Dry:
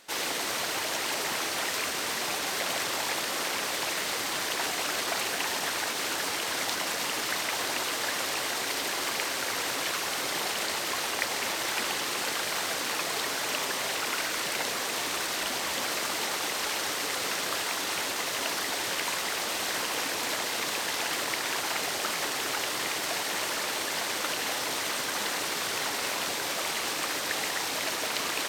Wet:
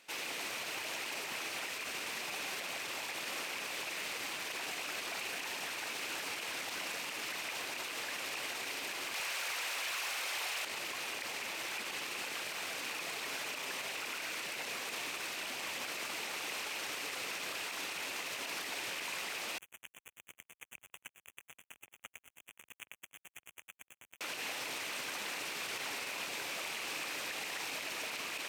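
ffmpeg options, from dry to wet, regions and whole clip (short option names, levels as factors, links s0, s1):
-filter_complex "[0:a]asettb=1/sr,asplit=3[s0][s1][s2];[s0]atrim=end=9.144[s3];[s1]atrim=start=9.14:end=10.65,asetpts=PTS-STARTPTS,afade=t=in:d=0.004:c=qsin,afade=t=out:st=1.506:d=0.004:c=qsin,highpass=610,aeval=exprs='0.224*sin(PI/2*3.16*val(0)/0.224)':c=same[s4];[s2]atrim=start=10.646[s5];[s3][s4]acrossfade=d=0.004:c1=hsin:c2=qsin[s6];[s6][s5]acrossfade=d=0.004:c1=qsin:c2=hsin,asettb=1/sr,asplit=3[s7][s8][s9];[s7]atrim=end=19.584[s10];[s8]atrim=start=19.58:end=24.21,asetpts=PTS-STARTPTS,afade=t=in:d=0.004:c=qsin,afade=t=out:st=4.626:d=0.004:c=qsin,acrossover=split=1100[s11][s12];[s11]aeval=exprs='val(0)*(1-1/2+1/2*cos(2*PI*9.1*n/s))':c=same[s13];[s12]aeval=exprs='val(0)*(1-1/2-1/2*cos(2*PI*9.1*n/s))':c=same[s14];[s13][s14]amix=inputs=2:normalize=0,acrusher=bits=3:mix=0:aa=0.5,asuperstop=centerf=4600:order=12:qfactor=1.7[s15];[s9]atrim=start=24.206[s16];[s10][s15]acrossfade=d=0.004:c1=hsin:c2=qsin[s17];[s17][s16]acrossfade=d=0.004:c1=qsin:c2=hsin,highpass=67,equalizer=f=2500:w=3.1:g=9,alimiter=limit=0.0841:level=0:latency=1:release=43,volume=0.355"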